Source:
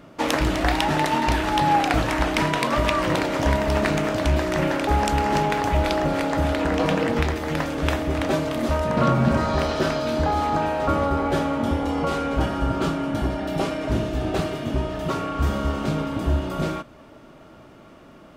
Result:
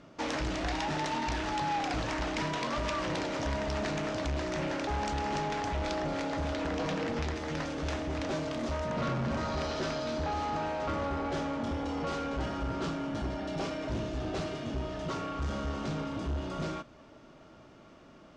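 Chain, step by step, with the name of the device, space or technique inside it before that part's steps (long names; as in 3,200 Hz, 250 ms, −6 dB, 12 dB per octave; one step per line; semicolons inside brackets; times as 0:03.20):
overdriven synthesiser ladder filter (soft clipping −20.5 dBFS, distortion −11 dB; transistor ladder low-pass 7,500 Hz, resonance 35%)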